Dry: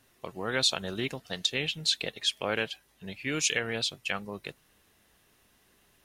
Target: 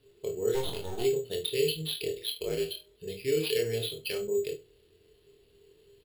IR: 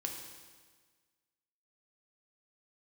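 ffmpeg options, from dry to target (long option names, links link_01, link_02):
-filter_complex "[0:a]asettb=1/sr,asplit=3[link_01][link_02][link_03];[link_01]atrim=end=2.044[link_04];[link_02]atrim=start=2.04:end=2.71,asetpts=PTS-STARTPTS,afade=type=in:duration=0.004:curve=qsin,afade=type=out:start_time=0.666:duration=0.004:curve=qsin,aeval=exprs='val(0)*sin(2*PI*56*n/s)':channel_layout=same[link_05];[link_03]atrim=start=2.706[link_06];[link_04][link_05]acrossfade=duration=0.004:curve1=hsin:curve2=qsin[link_07];[link_07][link_06]acrossfade=duration=0.004:curve1=qsin:curve2=hsin,firequalizer=gain_entry='entry(110,0);entry(240,-9);entry(400,9);entry(700,-15);entry(1100,-21);entry(3100,3);entry(6000,-22);entry(14000,7)':delay=0.05:min_phase=1,asplit=3[link_08][link_09][link_10];[link_08]afade=type=out:start_time=0.54:duration=0.02[link_11];[link_09]aeval=exprs='max(val(0),0)':channel_layout=same,afade=type=in:start_time=0.54:duration=0.02,afade=type=out:start_time=1.02:duration=0.02[link_12];[link_10]afade=type=in:start_time=1.02:duration=0.02[link_13];[link_11][link_12][link_13]amix=inputs=3:normalize=0,aemphasis=mode=reproduction:type=50fm,asplit=2[link_14][link_15];[link_15]adelay=25,volume=-7dB[link_16];[link_14][link_16]amix=inputs=2:normalize=0,bandreject=frequency=122.3:width_type=h:width=4,bandreject=frequency=244.6:width_type=h:width=4,bandreject=frequency=366.9:width_type=h:width=4,bandreject=frequency=489.2:width_type=h:width=4,bandreject=frequency=611.5:width_type=h:width=4,bandreject=frequency=733.8:width_type=h:width=4,bandreject=frequency=856.1:width_type=h:width=4,bandreject=frequency=978.4:width_type=h:width=4,bandreject=frequency=1100.7:width_type=h:width=4,bandreject=frequency=1223:width_type=h:width=4,bandreject=frequency=1345.3:width_type=h:width=4,bandreject=frequency=1467.6:width_type=h:width=4,asplit=2[link_17][link_18];[link_18]acompressor=threshold=-36dB:ratio=6,volume=0dB[link_19];[link_17][link_19]amix=inputs=2:normalize=0,aecho=1:1:72:0.112[link_20];[1:a]atrim=start_sample=2205,atrim=end_sample=3528,asetrate=57330,aresample=44100[link_21];[link_20][link_21]afir=irnorm=-1:irlink=0,acrusher=samples=6:mix=1:aa=0.000001"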